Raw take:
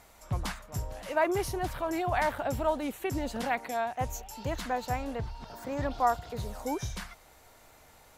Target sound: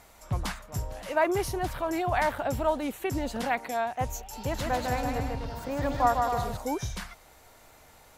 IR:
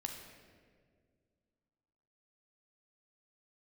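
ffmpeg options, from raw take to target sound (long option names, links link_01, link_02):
-filter_complex "[0:a]asettb=1/sr,asplit=3[link_01][link_02][link_03];[link_01]atrim=end=4.184[link_04];[link_02]atrim=start=4.18:end=6.57,asetpts=PTS-STARTPTS,afade=type=in:duration=0.004:curve=qsin,afade=type=out:start_time=2.386:duration=0.004:curve=qsin,aecho=1:1:150|255|328.5|380|416:0.631|0.398|0.251|0.158|0.1,atrim=end_sample=105399[link_05];[link_03]atrim=start=6.566[link_06];[link_04][link_05]acrossfade=duration=0.004:curve1=hsin:curve2=qsin[link_07];[link_07][link_06]acrossfade=duration=0.004:curve1=qsin:curve2=hsin,volume=2dB"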